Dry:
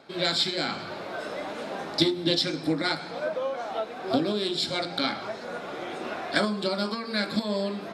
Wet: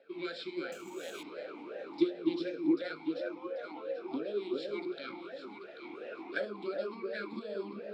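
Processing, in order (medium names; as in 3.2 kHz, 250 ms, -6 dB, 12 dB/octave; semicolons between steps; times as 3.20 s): 4.93–5.85 s: peaking EQ 470 Hz -8.5 dB 1.3 oct; echo whose repeats swap between lows and highs 394 ms, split 1.1 kHz, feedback 52%, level -3 dB; 0.72–1.23 s: careless resampling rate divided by 6×, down none, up zero stuff; talking filter e-u 2.8 Hz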